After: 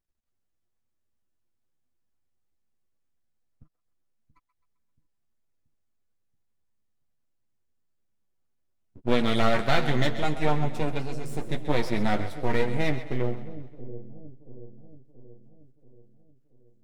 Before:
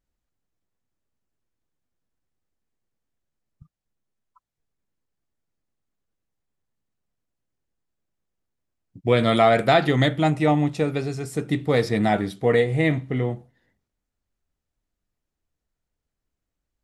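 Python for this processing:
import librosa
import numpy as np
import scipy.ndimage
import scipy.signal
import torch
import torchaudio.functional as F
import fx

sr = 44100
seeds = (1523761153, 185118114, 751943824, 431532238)

y = np.maximum(x, 0.0)
y = fx.chorus_voices(y, sr, voices=6, hz=0.49, base_ms=11, depth_ms=3.1, mix_pct=40)
y = fx.echo_split(y, sr, split_hz=500.0, low_ms=680, high_ms=131, feedback_pct=52, wet_db=-12.5)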